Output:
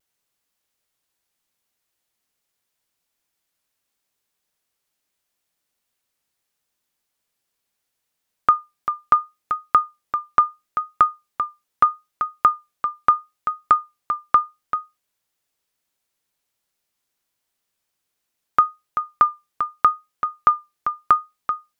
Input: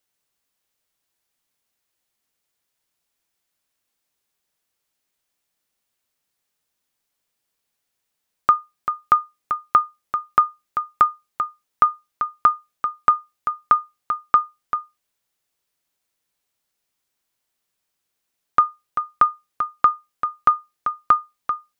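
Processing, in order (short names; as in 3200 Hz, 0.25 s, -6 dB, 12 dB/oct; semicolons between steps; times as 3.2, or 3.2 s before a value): vibrato 0.76 Hz 25 cents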